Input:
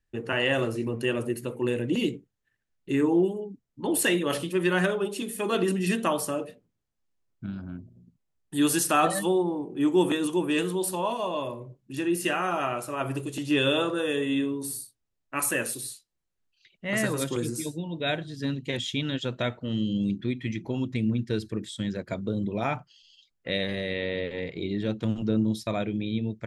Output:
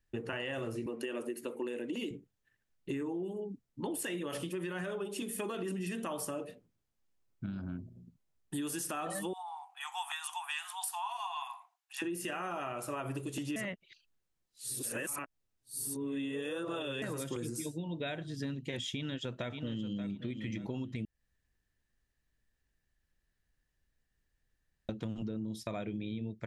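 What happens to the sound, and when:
0.86–2.11 s: high-pass 230 Hz 24 dB/octave
9.33–12.02 s: brick-wall FIR high-pass 690 Hz
13.56–17.02 s: reverse
18.92–20.08 s: echo throw 580 ms, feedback 20%, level -11 dB
21.05–24.89 s: room tone
whole clip: dynamic bell 4.1 kHz, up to -7 dB, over -57 dBFS, Q 6.4; peak limiter -20 dBFS; compression 6:1, threshold -35 dBFS

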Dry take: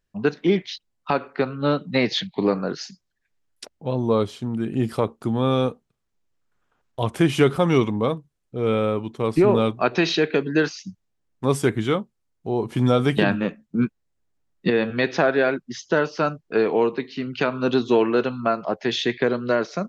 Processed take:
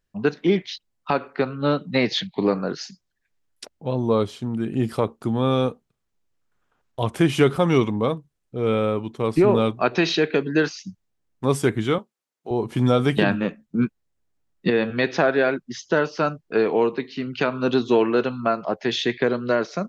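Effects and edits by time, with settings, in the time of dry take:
11.98–12.51 s: Bessel high-pass 460 Hz

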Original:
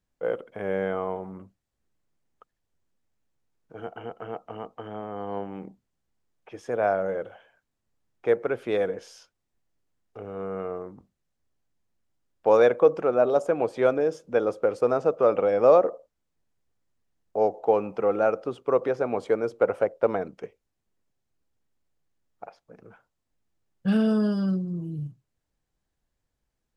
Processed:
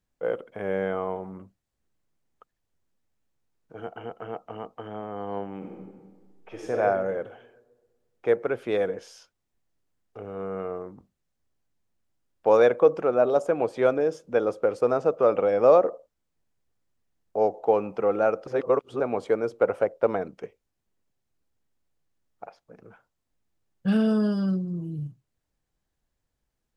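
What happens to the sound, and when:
5.57–6.75 s: reverb throw, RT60 1.5 s, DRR -2 dB
18.47–19.00 s: reverse

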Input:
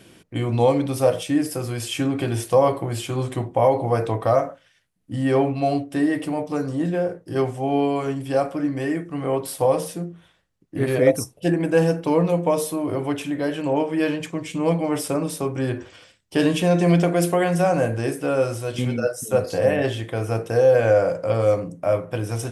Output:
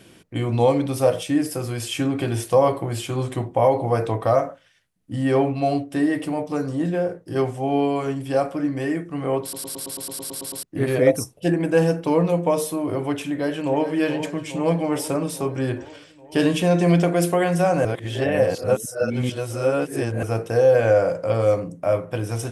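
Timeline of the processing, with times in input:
9.42 s: stutter in place 0.11 s, 11 plays
13.24–13.88 s: echo throw 420 ms, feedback 70%, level -10 dB
17.85–20.23 s: reverse

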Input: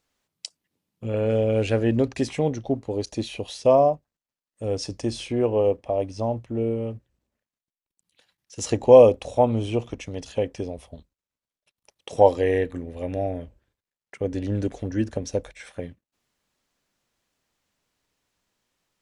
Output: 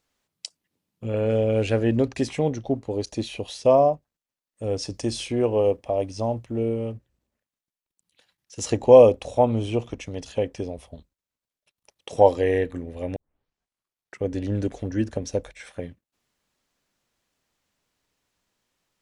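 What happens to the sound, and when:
4.94–6.92 s: treble shelf 3.9 kHz +6 dB
13.16 s: tape start 1.06 s

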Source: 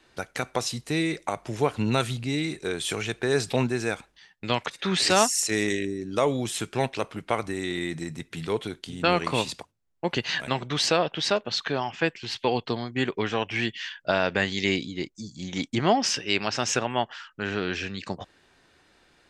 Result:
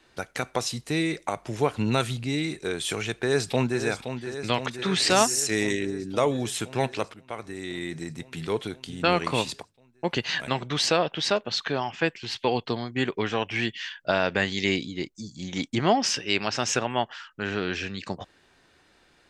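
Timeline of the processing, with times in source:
3.17–3.82 s: echo throw 520 ms, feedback 75%, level -9 dB
7.14–8.68 s: fade in equal-power, from -15.5 dB

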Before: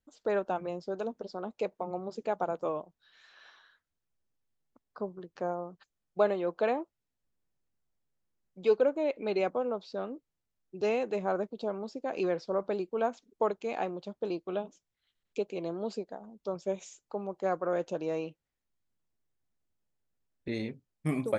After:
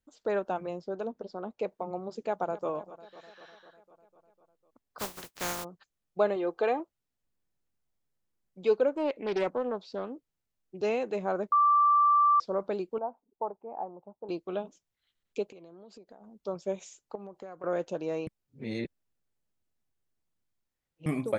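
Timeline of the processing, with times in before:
0.81–1.68 s: treble shelf 3.6 kHz -8 dB
2.22–2.70 s: echo throw 250 ms, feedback 70%, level -16.5 dB
4.98–5.63 s: spectral contrast reduction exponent 0.24
6.36–6.80 s: comb 2.5 ms, depth 52%
8.92–10.78 s: loudspeaker Doppler distortion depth 0.26 ms
11.52–12.40 s: bleep 1.17 kHz -19 dBFS
12.98–14.29 s: four-pole ladder low-pass 970 Hz, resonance 65%
15.52–16.40 s: compression 10:1, threshold -47 dBFS
17.15–17.64 s: compression 12:1, threshold -39 dBFS
18.27–21.06 s: reverse

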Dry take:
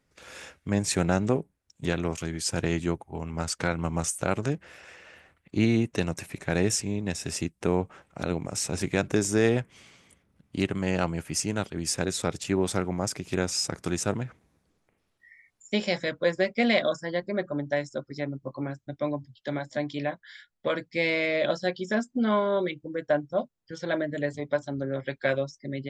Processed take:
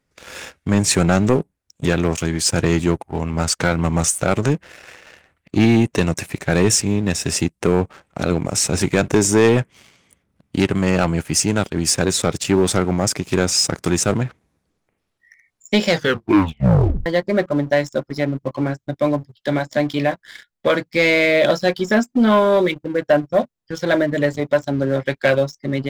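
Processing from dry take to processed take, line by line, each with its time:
15.89 s: tape stop 1.17 s
whole clip: waveshaping leveller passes 2; trim +4 dB

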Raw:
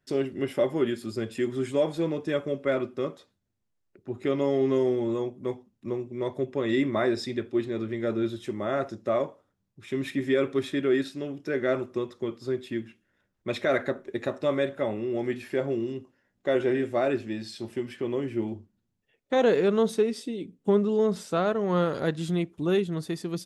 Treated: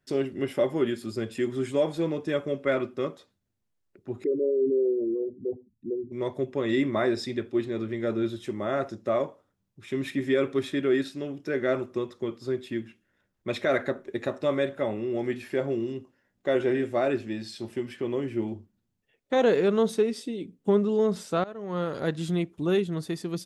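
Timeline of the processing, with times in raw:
2.45–3.08 s: dynamic bell 1.9 kHz, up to +3 dB, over -41 dBFS, Q 0.82
4.24–6.12 s: resonances exaggerated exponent 3
21.44–22.16 s: fade in, from -19 dB

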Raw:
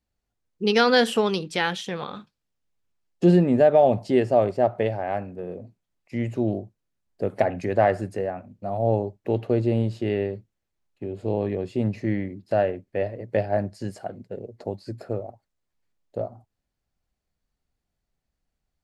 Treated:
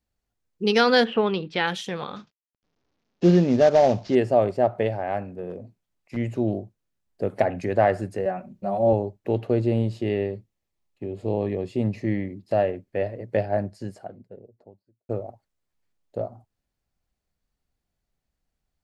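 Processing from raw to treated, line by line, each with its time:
1.03–1.66 s: low-pass 2.6 kHz -> 4.6 kHz 24 dB/octave
2.16–4.15 s: CVSD coder 32 kbps
5.50–6.17 s: hard clipper -26.5 dBFS
8.25–8.93 s: comb 5.3 ms, depth 97%
9.79–12.74 s: band-stop 1.5 kHz, Q 6.6
13.28–15.09 s: studio fade out

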